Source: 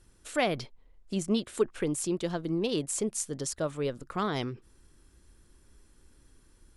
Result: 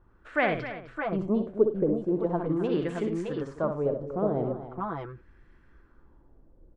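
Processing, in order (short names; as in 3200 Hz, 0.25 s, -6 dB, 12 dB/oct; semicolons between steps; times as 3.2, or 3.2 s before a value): tapped delay 63/105/258/329/615/621 ms -7/-17/-13/-18/-8/-8 dB; LFO low-pass sine 0.41 Hz 570–1900 Hz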